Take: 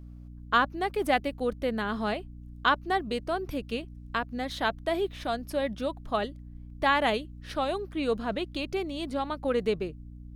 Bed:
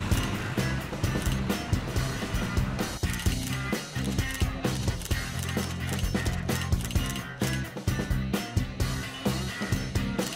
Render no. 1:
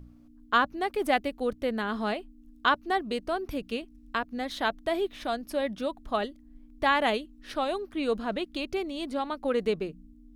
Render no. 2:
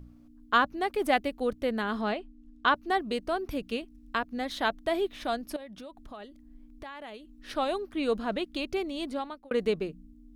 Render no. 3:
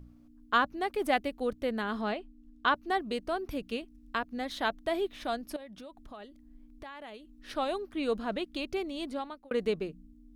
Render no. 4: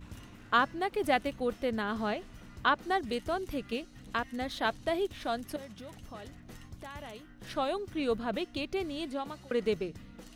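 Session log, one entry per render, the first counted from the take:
de-hum 60 Hz, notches 3
2.01–2.75 s: distance through air 77 m; 5.56–7.36 s: compression 4:1, threshold -43 dBFS; 9.06–9.51 s: fade out
trim -2.5 dB
add bed -22 dB

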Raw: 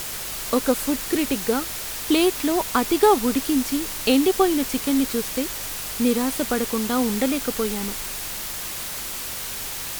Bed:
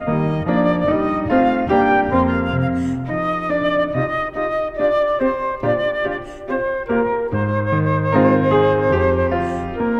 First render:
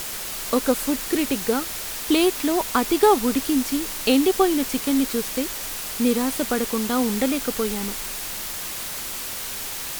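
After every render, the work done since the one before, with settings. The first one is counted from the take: de-hum 50 Hz, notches 3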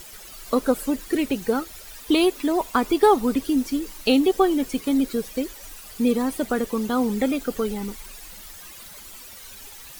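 noise reduction 14 dB, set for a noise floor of -31 dBFS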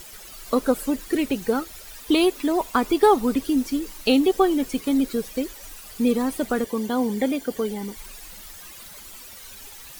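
6.64–7.97 s: comb of notches 1.3 kHz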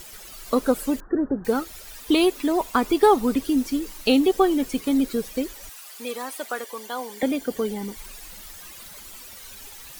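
1.00–1.45 s: steep low-pass 1.7 kHz 96 dB/octave; 5.69–7.23 s: high-pass 710 Hz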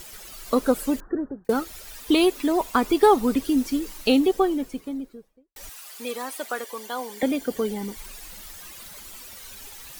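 0.99–1.49 s: fade out linear; 3.92–5.56 s: studio fade out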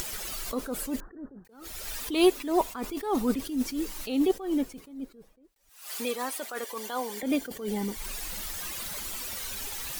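upward compressor, threshold -28 dBFS; attacks held to a fixed rise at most 110 dB/s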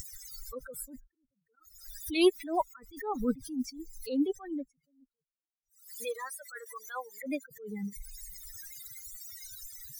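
expander on every frequency bin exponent 3; swell ahead of each attack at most 110 dB/s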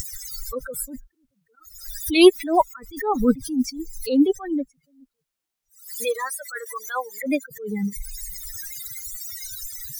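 trim +11.5 dB

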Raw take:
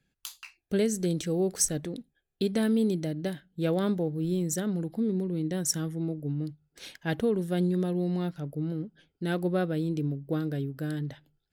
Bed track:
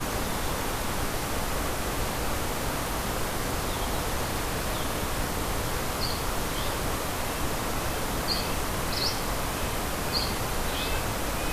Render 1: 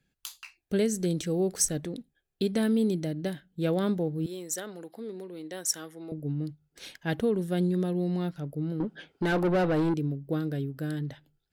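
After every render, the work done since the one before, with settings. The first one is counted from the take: 4.26–6.12 s: high-pass 510 Hz; 8.80–9.94 s: overdrive pedal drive 26 dB, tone 1.6 kHz, clips at -18 dBFS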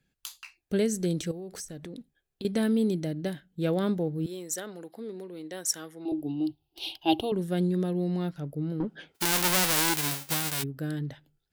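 1.31–2.45 s: compression 12:1, threshold -36 dBFS; 6.05–7.32 s: FFT filter 120 Hz 0 dB, 190 Hz -23 dB, 330 Hz +13 dB, 480 Hz -7 dB, 790 Hz +13 dB, 1.8 kHz -22 dB, 2.8 kHz +14 dB, 4.9 kHz +6 dB, 7.1 kHz -13 dB, 11 kHz +5 dB; 9.14–10.62 s: formants flattened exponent 0.1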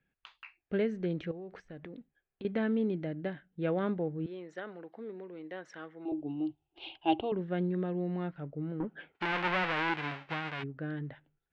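low-pass 2.5 kHz 24 dB/octave; bass shelf 450 Hz -7 dB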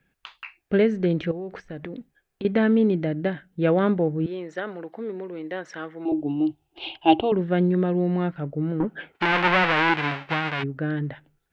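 trim +11 dB

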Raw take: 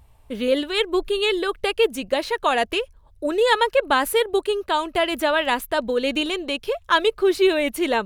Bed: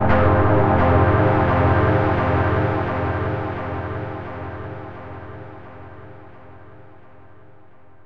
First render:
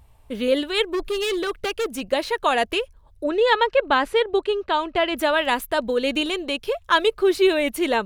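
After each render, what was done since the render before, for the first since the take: 0.92–2.01 s: overload inside the chain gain 21 dB; 3.24–5.17 s: low-pass 4.4 kHz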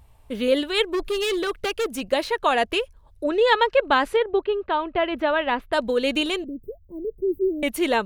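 2.27–2.74 s: treble shelf 5.4 kHz -5.5 dB; 4.16–5.73 s: distance through air 330 m; 6.44–7.63 s: inverse Chebyshev band-stop 1.3–6.9 kHz, stop band 70 dB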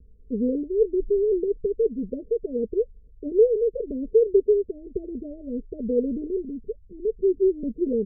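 steep low-pass 510 Hz 96 dB/octave; comb 4.7 ms, depth 72%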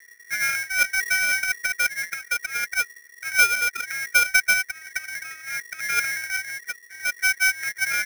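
median filter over 41 samples; polarity switched at an audio rate 1.9 kHz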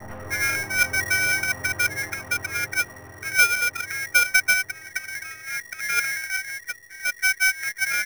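add bed -22 dB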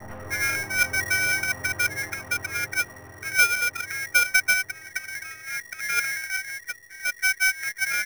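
trim -1.5 dB

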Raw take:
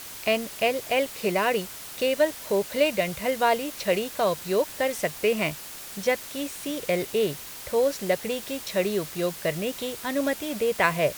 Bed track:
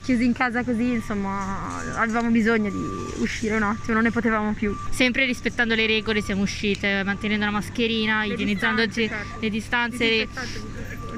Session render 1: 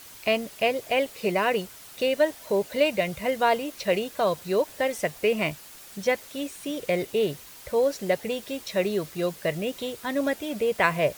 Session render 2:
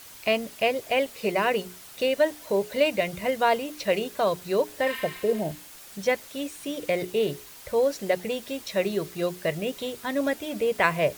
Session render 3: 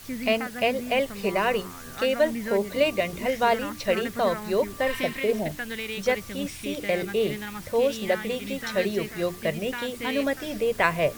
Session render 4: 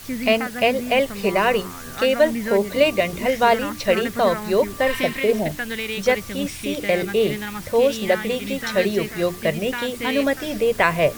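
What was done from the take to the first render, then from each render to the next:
noise reduction 7 dB, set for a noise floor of -40 dBFS
4.88–5.65 s: spectral replace 940–11000 Hz both; hum notches 60/120/180/240/300/360/420 Hz
add bed track -12.5 dB
trim +5.5 dB; peak limiter -3 dBFS, peak gain reduction 2.5 dB

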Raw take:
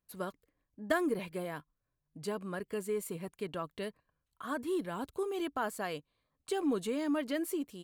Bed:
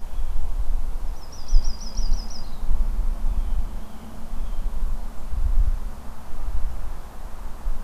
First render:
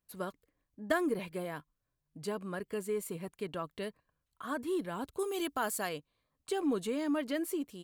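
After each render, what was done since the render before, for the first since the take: 5.19–5.89 s: treble shelf 3.7 kHz +11 dB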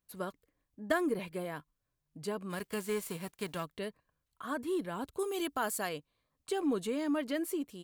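2.49–3.64 s: formants flattened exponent 0.6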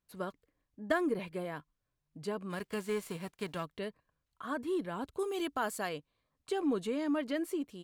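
treble shelf 8.4 kHz -11 dB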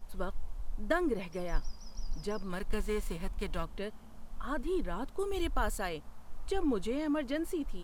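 add bed -15.5 dB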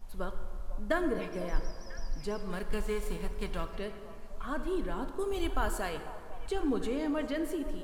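repeats whose band climbs or falls 497 ms, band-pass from 760 Hz, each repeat 1.4 oct, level -12 dB; plate-style reverb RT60 2.2 s, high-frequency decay 0.55×, DRR 7.5 dB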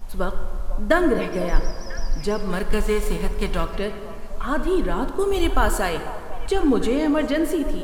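trim +12 dB

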